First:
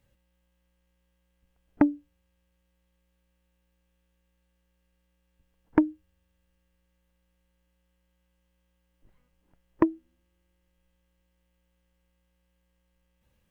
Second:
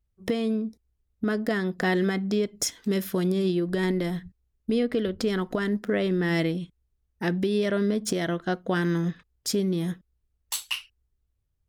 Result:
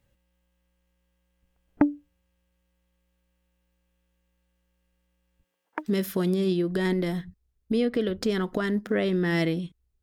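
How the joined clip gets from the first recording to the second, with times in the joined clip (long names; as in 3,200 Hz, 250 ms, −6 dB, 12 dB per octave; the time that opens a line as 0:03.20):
first
0:05.43–0:05.88: high-pass filter 230 Hz → 1,200 Hz
0:05.85: continue with second from 0:02.83, crossfade 0.06 s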